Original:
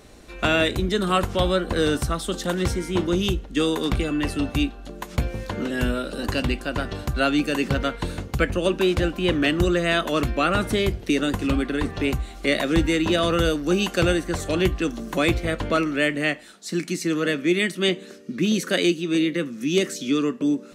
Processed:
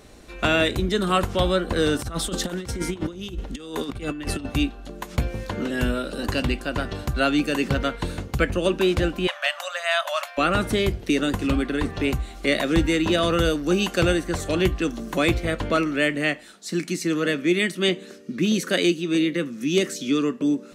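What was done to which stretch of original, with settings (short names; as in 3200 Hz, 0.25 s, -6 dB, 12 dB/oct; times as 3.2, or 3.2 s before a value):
1.99–4.45 negative-ratio compressor -28 dBFS, ratio -0.5
9.27–10.38 brick-wall FIR high-pass 540 Hz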